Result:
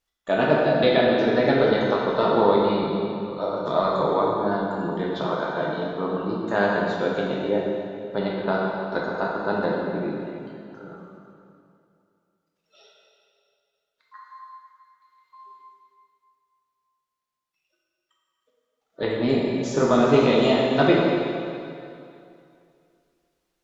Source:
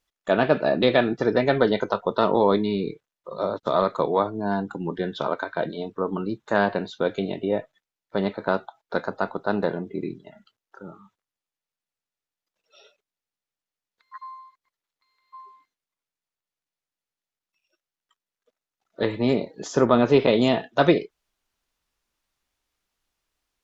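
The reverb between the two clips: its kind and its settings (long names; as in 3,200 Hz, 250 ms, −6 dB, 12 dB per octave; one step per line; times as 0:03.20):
dense smooth reverb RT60 2.5 s, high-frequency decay 0.9×, DRR −3.5 dB
level −3.5 dB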